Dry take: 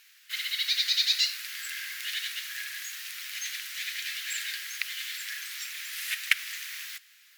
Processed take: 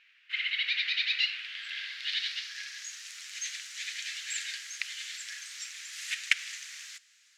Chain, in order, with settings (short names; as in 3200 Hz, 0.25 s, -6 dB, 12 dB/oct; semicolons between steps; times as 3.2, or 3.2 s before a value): low-pass sweep 2600 Hz -> 7100 Hz, 1.14–3.09; dynamic EQ 2500 Hz, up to +5 dB, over -35 dBFS, Q 0.82; gain -7 dB